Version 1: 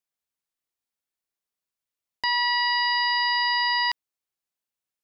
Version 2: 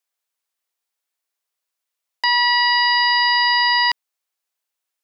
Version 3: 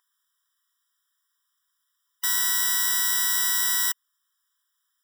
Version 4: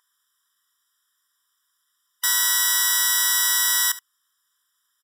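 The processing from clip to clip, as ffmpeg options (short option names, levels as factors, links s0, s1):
-af "highpass=500,volume=2.24"
-af "aeval=exprs='(mod(16.8*val(0)+1,2)-1)/16.8':c=same,aeval=exprs='val(0)+0.00562*(sin(2*PI*50*n/s)+sin(2*PI*2*50*n/s)/2+sin(2*PI*3*50*n/s)/3+sin(2*PI*4*50*n/s)/4+sin(2*PI*5*50*n/s)/5)':c=same,afftfilt=real='re*eq(mod(floor(b*sr/1024/990),2),1)':imag='im*eq(mod(floor(b*sr/1024/990),2),1)':win_size=1024:overlap=0.75,volume=2.82"
-af "aresample=32000,aresample=44100,aecho=1:1:72:0.133,volume=1.88"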